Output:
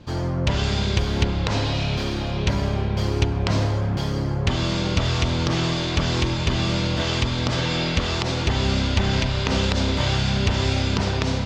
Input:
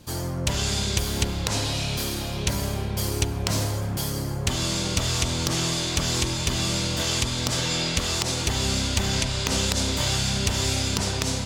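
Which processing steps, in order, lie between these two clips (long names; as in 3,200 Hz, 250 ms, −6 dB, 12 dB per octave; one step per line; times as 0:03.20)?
high-frequency loss of the air 200 metres
level +5 dB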